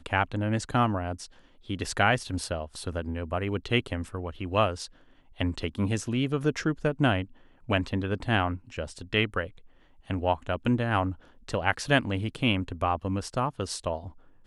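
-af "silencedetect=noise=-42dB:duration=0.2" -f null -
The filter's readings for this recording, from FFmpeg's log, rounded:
silence_start: 1.26
silence_end: 1.70 | silence_duration: 0.43
silence_start: 4.86
silence_end: 5.39 | silence_duration: 0.52
silence_start: 7.25
silence_end: 7.68 | silence_duration: 0.43
silence_start: 9.58
silence_end: 10.10 | silence_duration: 0.52
silence_start: 11.15
silence_end: 11.48 | silence_duration: 0.33
silence_start: 14.10
silence_end: 14.47 | silence_duration: 0.37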